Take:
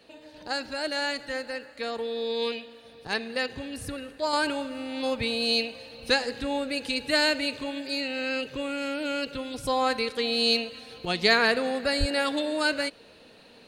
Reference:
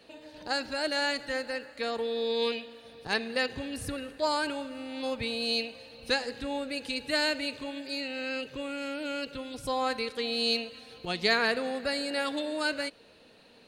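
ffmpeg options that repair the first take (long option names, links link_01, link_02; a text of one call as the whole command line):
ffmpeg -i in.wav -filter_complex "[0:a]asplit=3[link_01][link_02][link_03];[link_01]afade=type=out:start_time=11.99:duration=0.02[link_04];[link_02]highpass=frequency=140:width=0.5412,highpass=frequency=140:width=1.3066,afade=type=in:start_time=11.99:duration=0.02,afade=type=out:start_time=12.11:duration=0.02[link_05];[link_03]afade=type=in:start_time=12.11:duration=0.02[link_06];[link_04][link_05][link_06]amix=inputs=3:normalize=0,asetnsamples=nb_out_samples=441:pad=0,asendcmd='4.33 volume volume -4.5dB',volume=0dB" out.wav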